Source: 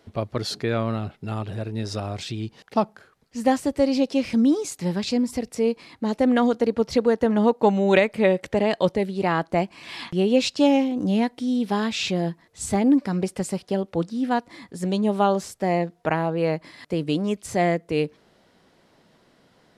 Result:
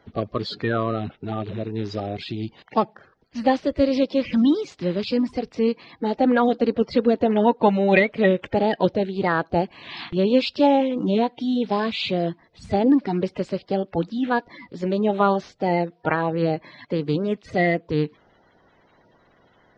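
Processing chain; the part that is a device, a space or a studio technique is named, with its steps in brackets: clip after many re-uploads (low-pass 4.4 kHz 24 dB/octave; coarse spectral quantiser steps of 30 dB); trim +1.5 dB

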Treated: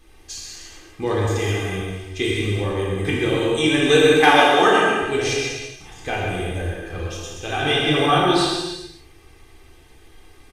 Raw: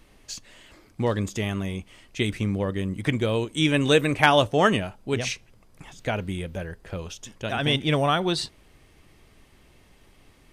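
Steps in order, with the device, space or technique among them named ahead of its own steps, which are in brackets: microphone above a desk (comb 2.5 ms, depth 60%; reverberation RT60 0.30 s, pre-delay 113 ms, DRR 6 dB); 4.13–5.02 s: high-pass 180 Hz 24 dB/octave; gated-style reverb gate 460 ms falling, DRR -5 dB; trim -2 dB

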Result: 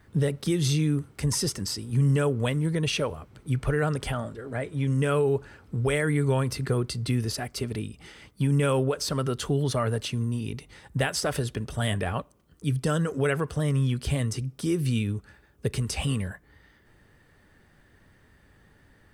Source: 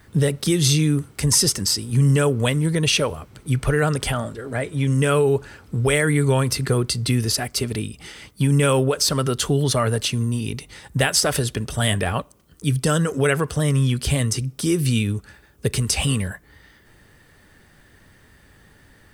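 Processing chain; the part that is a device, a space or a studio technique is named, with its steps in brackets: behind a face mask (treble shelf 3.1 kHz -7.5 dB); trim -5.5 dB

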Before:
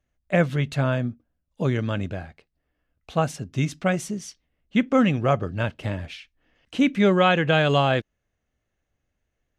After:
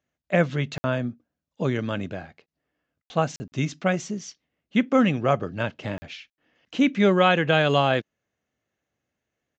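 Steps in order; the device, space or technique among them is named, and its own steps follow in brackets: call with lost packets (high-pass 140 Hz 12 dB/octave; resampled via 16 kHz; lost packets bursts)

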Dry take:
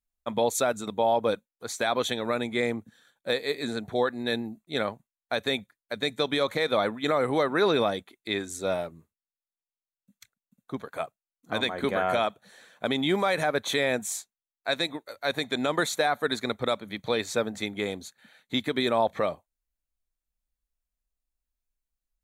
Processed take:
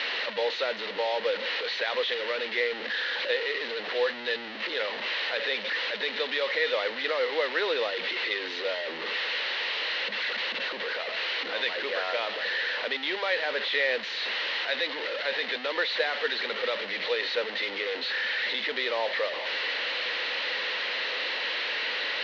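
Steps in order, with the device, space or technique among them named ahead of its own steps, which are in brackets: digital answering machine (band-pass 370–3100 Hz; one-bit delta coder 32 kbps, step -24.5 dBFS; cabinet simulation 450–4200 Hz, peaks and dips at 500 Hz +8 dB, 710 Hz -7 dB, 1.2 kHz -4 dB, 1.9 kHz +9 dB, 2.9 kHz +7 dB, 4.1 kHz +8 dB); trim -3.5 dB

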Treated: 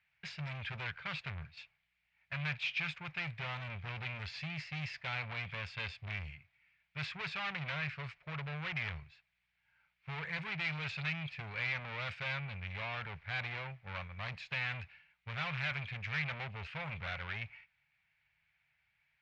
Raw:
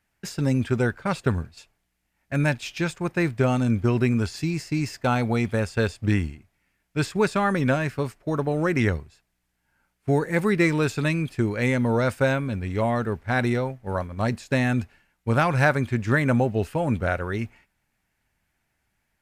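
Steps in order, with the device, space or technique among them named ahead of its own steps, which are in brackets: scooped metal amplifier (valve stage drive 31 dB, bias 0.4; cabinet simulation 82–3700 Hz, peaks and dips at 150 Hz +9 dB, 270 Hz -5 dB, 2.3 kHz +8 dB; amplifier tone stack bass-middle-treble 10-0-10); trim +3 dB

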